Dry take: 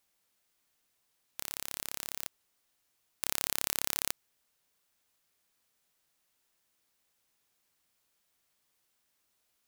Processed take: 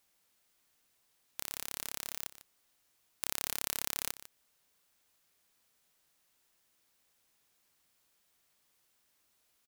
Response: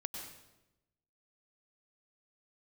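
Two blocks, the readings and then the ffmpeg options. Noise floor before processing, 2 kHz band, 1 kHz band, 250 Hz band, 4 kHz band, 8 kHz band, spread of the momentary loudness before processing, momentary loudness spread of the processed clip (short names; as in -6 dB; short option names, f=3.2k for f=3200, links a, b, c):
-77 dBFS, -3.0 dB, -3.0 dB, -2.5 dB, -3.0 dB, -3.0 dB, 12 LU, 10 LU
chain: -filter_complex "[0:a]acompressor=threshold=-40dB:ratio=1.5,asplit=2[a][b];[b]aecho=0:1:149:0.178[c];[a][c]amix=inputs=2:normalize=0,volume=2.5dB"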